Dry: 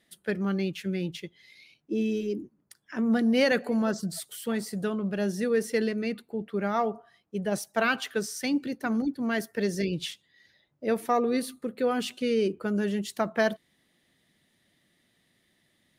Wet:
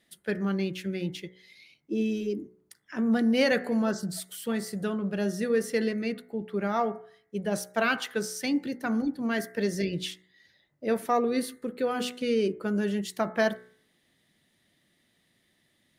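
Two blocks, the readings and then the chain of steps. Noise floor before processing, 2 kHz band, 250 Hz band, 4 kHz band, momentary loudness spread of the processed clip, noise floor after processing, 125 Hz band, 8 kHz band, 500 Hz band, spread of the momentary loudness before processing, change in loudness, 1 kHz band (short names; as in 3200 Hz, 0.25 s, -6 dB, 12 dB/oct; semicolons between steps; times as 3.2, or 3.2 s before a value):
-71 dBFS, -0.5 dB, -0.5 dB, 0.0 dB, 10 LU, -71 dBFS, -0.5 dB, 0.0 dB, -0.5 dB, 10 LU, -0.5 dB, -0.5 dB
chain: de-hum 61.64 Hz, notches 36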